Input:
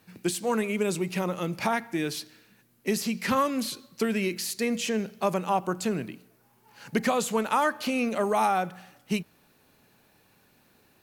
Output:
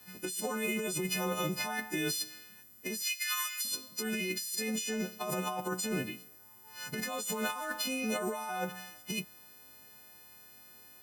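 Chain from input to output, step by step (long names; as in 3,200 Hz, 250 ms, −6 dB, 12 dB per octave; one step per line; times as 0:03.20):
every partial snapped to a pitch grid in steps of 3 semitones
0:03.02–0:03.65: inverse Chebyshev high-pass filter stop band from 270 Hz, stop band 80 dB
compressor whose output falls as the input rises −29 dBFS, ratio −1
0:06.99–0:07.81: noise that follows the level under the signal 22 dB
level −5.5 dB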